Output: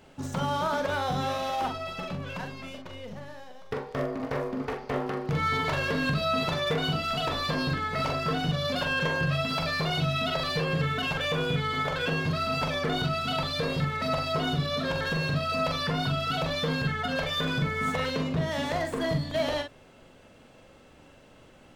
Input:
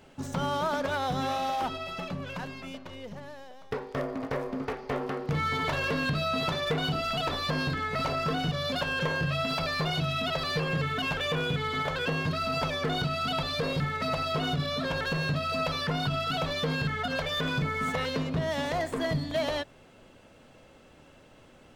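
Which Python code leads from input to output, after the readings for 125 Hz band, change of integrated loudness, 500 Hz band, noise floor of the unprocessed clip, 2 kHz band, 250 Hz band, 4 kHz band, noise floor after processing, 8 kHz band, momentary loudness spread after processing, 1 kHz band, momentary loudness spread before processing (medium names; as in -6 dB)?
+1.5 dB, +1.5 dB, +1.5 dB, -55 dBFS, +1.0 dB, +1.5 dB, +1.0 dB, -54 dBFS, +1.0 dB, 8 LU, +1.0 dB, 7 LU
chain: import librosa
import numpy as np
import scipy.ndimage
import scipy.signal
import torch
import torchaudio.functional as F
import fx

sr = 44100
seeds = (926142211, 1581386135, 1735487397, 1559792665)

y = fx.doubler(x, sr, ms=43.0, db=-6)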